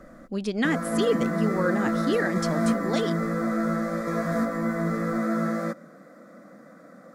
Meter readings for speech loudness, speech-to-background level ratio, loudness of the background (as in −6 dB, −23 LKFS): −28.5 LKFS, −1.5 dB, −27.0 LKFS